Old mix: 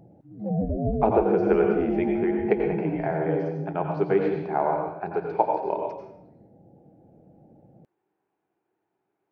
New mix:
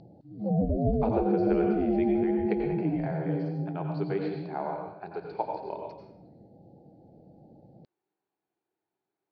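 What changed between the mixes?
speech −9.5 dB
master: add low-pass with resonance 4,400 Hz, resonance Q 7.7

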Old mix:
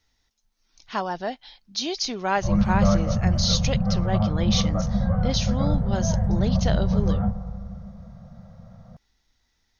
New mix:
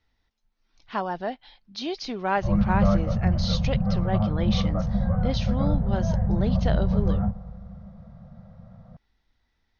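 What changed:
background: send −6.5 dB
master: add high-frequency loss of the air 230 metres

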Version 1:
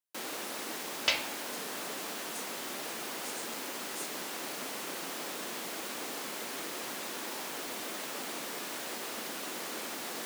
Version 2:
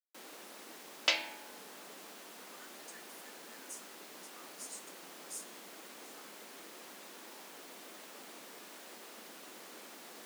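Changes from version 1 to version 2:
speech: entry +1.35 s
first sound −11.5 dB
master: add Chebyshev high-pass filter 170 Hz, order 4

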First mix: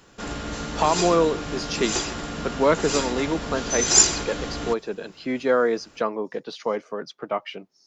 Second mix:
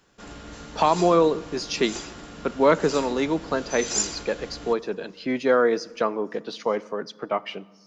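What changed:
background −11.0 dB
reverb: on, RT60 1.3 s

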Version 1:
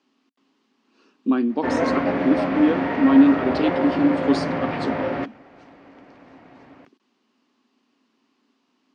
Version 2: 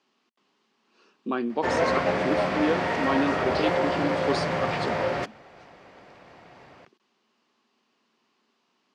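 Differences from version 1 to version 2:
background: remove low-pass filter 2,800 Hz 12 dB per octave
master: add parametric band 270 Hz −14.5 dB 0.39 octaves

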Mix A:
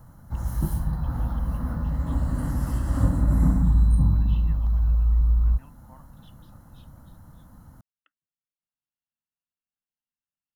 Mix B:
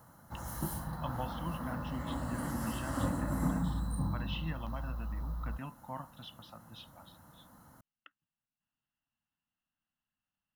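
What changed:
speech +10.5 dB
background: add high-pass filter 490 Hz 6 dB per octave

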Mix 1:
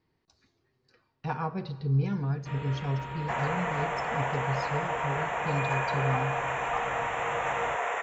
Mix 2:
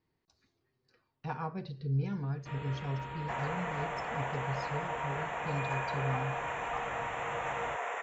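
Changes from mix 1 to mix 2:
speech −3.0 dB
second sound −5.5 dB
reverb: off

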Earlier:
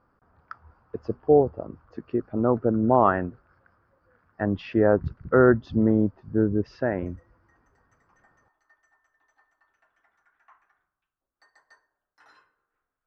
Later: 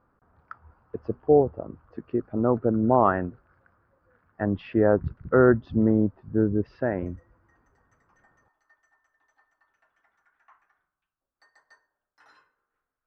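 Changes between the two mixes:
speech: add high-frequency loss of the air 230 metres
reverb: off

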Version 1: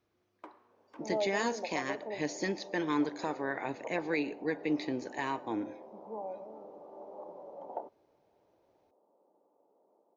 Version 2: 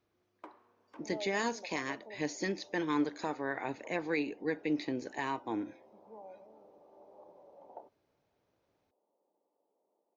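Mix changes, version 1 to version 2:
second sound −10.0 dB
reverb: off

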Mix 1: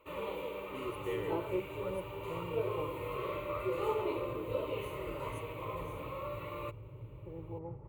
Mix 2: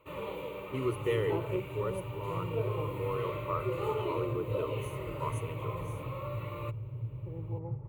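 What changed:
speech +8.5 dB
master: add parametric band 120 Hz +12 dB 0.69 octaves

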